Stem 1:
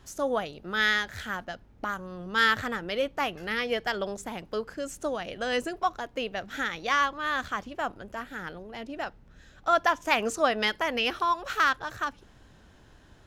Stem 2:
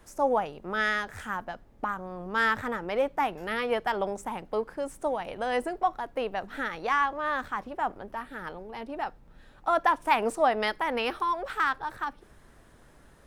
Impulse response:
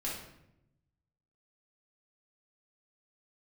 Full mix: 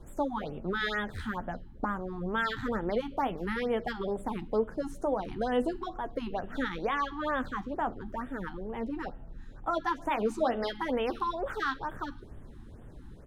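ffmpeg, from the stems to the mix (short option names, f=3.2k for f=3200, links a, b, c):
-filter_complex "[0:a]equalizer=f=3.8k:w=2.2:g=11.5,asplit=2[a][b];[b]adelay=11.3,afreqshift=1.2[c];[a][c]amix=inputs=2:normalize=1,volume=-6.5dB,asplit=2[d][e];[e]volume=-12.5dB[f];[1:a]alimiter=limit=-21.5dB:level=0:latency=1:release=243,volume=-1,adelay=0.6,volume=0.5dB[g];[2:a]atrim=start_sample=2205[h];[f][h]afir=irnorm=-1:irlink=0[i];[d][g][i]amix=inputs=3:normalize=0,tiltshelf=f=740:g=9,afftfilt=real='re*(1-between(b*sr/1024,500*pow(5300/500,0.5+0.5*sin(2*PI*2.2*pts/sr))/1.41,500*pow(5300/500,0.5+0.5*sin(2*PI*2.2*pts/sr))*1.41))':imag='im*(1-between(b*sr/1024,500*pow(5300/500,0.5+0.5*sin(2*PI*2.2*pts/sr))/1.41,500*pow(5300/500,0.5+0.5*sin(2*PI*2.2*pts/sr))*1.41))':win_size=1024:overlap=0.75"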